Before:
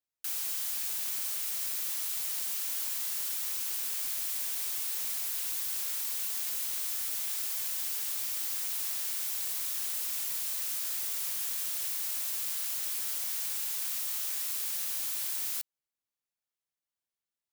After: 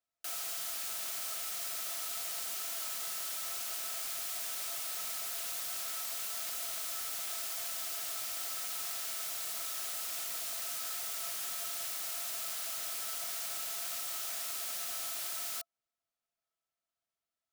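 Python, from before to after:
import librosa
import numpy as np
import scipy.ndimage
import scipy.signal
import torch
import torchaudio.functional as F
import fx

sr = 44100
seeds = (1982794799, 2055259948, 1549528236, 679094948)

y = fx.high_shelf(x, sr, hz=9300.0, db=-7.0)
y = fx.small_body(y, sr, hz=(680.0, 1300.0), ring_ms=70, db=15)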